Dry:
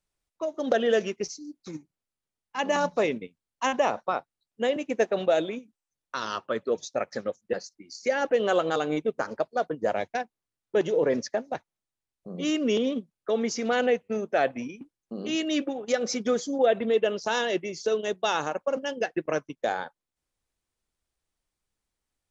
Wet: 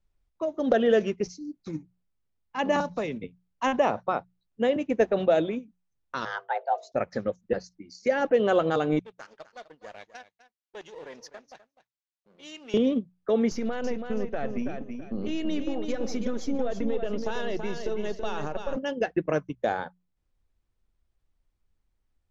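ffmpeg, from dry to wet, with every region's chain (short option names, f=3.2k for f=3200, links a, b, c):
-filter_complex "[0:a]asettb=1/sr,asplit=3[a][b][c];[a]atrim=end=2.804[d];[b]atrim=start=2.8:end=3.24,asetpts=PTS-STARTPTS,afade=t=in:d=0.004:c=qsin,afade=t=out:st=0.436:d=0.004:c=qsin,bass=f=250:g=4,treble=f=4k:g=8,acrossover=split=270|620|6400[e][f][g][h];[e]acompressor=threshold=-44dB:ratio=3[i];[f]acompressor=threshold=-40dB:ratio=3[j];[g]acompressor=threshold=-34dB:ratio=3[k];[h]acompressor=threshold=-57dB:ratio=3[l];[i][j][k][l]amix=inputs=4:normalize=0[m];[c]atrim=start=3.236[n];[d][m]acrossfade=d=0.004:c1=hsin:c2=qsin[o];[o][n]acrossfade=d=0.004:c1=qsin:c2=hsin,asettb=1/sr,asplit=3[p][q][r];[p]atrim=end=6.254[s];[q]atrim=start=6.25:end=6.92,asetpts=PTS-STARTPTS,afade=t=in:d=0.004:c=qsin,afade=t=out:st=0.666:d=0.004:c=qsin,highshelf=f=3.7k:g=-10.5,bandreject=f=50:t=h:w=6,bandreject=f=100:t=h:w=6,bandreject=f=150:t=h:w=6,bandreject=f=200:t=h:w=6,bandreject=f=250:t=h:w=6,bandreject=f=300:t=h:w=6,bandreject=f=350:t=h:w=6,bandreject=f=400:t=h:w=6,afreqshift=290[t];[r]atrim=start=6.916[u];[s][t]acrossfade=d=0.004:c1=hsin:c2=qsin[v];[v][u]acrossfade=d=0.004:c1=qsin:c2=hsin,asettb=1/sr,asplit=3[w][x][y];[w]atrim=end=8.994[z];[x]atrim=start=8.99:end=12.74,asetpts=PTS-STARTPTS,afade=t=in:d=0.004:c=qsin,afade=t=out:st=3.746:d=0.004:c=qsin,aeval=exprs='if(lt(val(0),0),0.447*val(0),val(0))':c=same,bandpass=f=6.1k:t=q:w=0.64,aecho=1:1:253:0.188,atrim=end_sample=165375[aa];[y]atrim=start=12.736[ab];[z][aa]acrossfade=d=0.004:c1=hsin:c2=qsin[ac];[ac][ab]acrossfade=d=0.004:c1=qsin:c2=hsin,asettb=1/sr,asplit=3[ad][ae][af];[ad]atrim=end=13.514[ag];[ae]atrim=start=13.51:end=18.76,asetpts=PTS-STARTPTS,afade=t=in:d=0.004:c=qsin,afade=t=out:st=5.246:d=0.004:c=qsin,aeval=exprs='if(lt(val(0),0),0.708*val(0),val(0))':c=same,acompressor=threshold=-29dB:ratio=5:attack=3.2:release=140:knee=1:detection=peak,aecho=1:1:329|658|987:0.473|0.128|0.0345,atrim=end_sample=231525[ah];[af]atrim=start=18.756[ai];[ag][ah]acrossfade=d=0.004:c1=hsin:c2=qsin[aj];[aj][ai]acrossfade=d=0.004:c1=qsin:c2=hsin,aemphasis=mode=reproduction:type=bsi,bandreject=f=60:t=h:w=6,bandreject=f=120:t=h:w=6,bandreject=f=180:t=h:w=6"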